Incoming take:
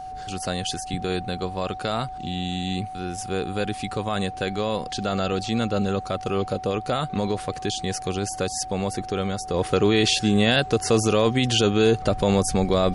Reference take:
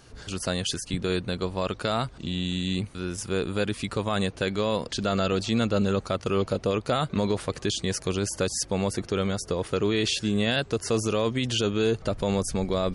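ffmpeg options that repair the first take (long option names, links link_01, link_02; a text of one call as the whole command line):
ffmpeg -i in.wav -af "bandreject=frequency=750:width=30,agate=range=-21dB:threshold=-27dB,asetnsamples=nb_out_samples=441:pad=0,asendcmd='9.54 volume volume -5.5dB',volume=0dB" out.wav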